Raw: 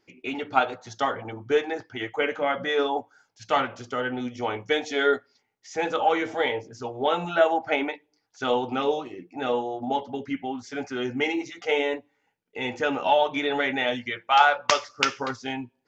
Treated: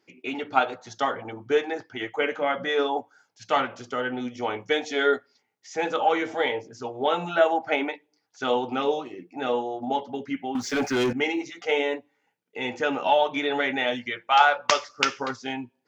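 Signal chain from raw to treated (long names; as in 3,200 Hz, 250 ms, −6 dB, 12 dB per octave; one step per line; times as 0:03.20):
high-pass filter 130 Hz 12 dB per octave
0:10.55–0:11.13: leveller curve on the samples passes 3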